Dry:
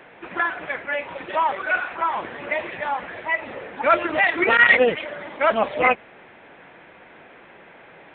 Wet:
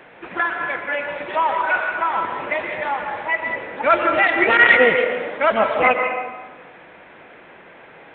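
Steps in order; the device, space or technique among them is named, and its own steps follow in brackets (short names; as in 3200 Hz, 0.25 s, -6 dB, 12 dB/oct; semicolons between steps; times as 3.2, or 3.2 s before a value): filtered reverb send (on a send: HPF 420 Hz 6 dB/oct + LPF 3400 Hz + reverb RT60 1.4 s, pre-delay 0.116 s, DRR 4 dB); on the sum: gain +1.5 dB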